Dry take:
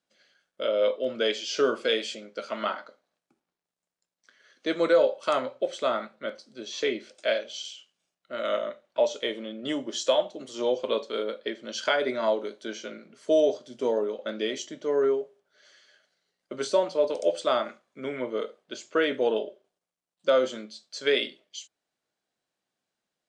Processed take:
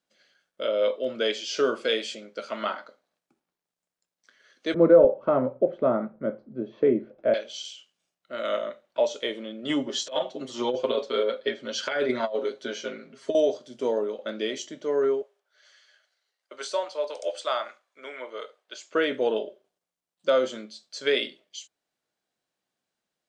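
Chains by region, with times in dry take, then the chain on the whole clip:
4.74–7.34 s: low-pass 1.6 kHz + tilt EQ -5.5 dB/octave
9.69–13.35 s: comb 7.5 ms, depth 86% + compressor with a negative ratio -24 dBFS, ratio -0.5 + distance through air 52 m
15.22–18.92 s: high-pass 700 Hz + treble shelf 7.8 kHz -2.5 dB
whole clip: none

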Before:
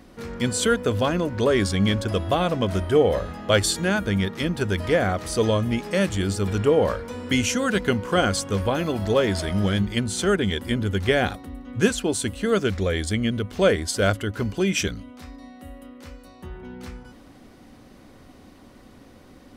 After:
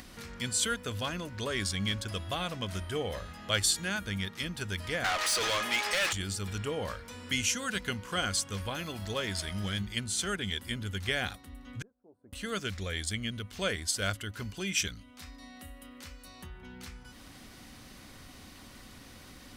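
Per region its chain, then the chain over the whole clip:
5.04–6.13 s: high-pass 470 Hz + overdrive pedal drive 28 dB, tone 3 kHz, clips at -11 dBFS
11.82–12.33 s: inverse Chebyshev low-pass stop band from 2.8 kHz, stop band 70 dB + differentiator
whole clip: amplifier tone stack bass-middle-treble 5-5-5; upward compressor, threshold -43 dBFS; trim +3.5 dB

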